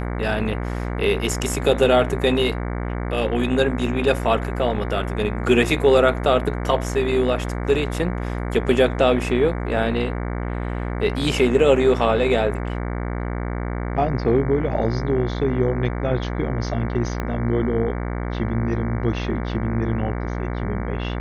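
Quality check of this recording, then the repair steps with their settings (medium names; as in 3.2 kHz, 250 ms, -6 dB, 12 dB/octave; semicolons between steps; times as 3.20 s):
buzz 60 Hz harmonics 38 -26 dBFS
17.20 s: pop -13 dBFS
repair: de-click; de-hum 60 Hz, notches 38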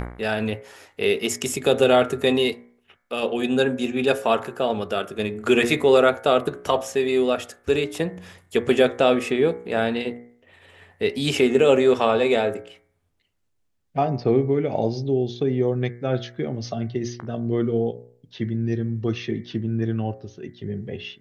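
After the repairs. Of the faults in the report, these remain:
17.20 s: pop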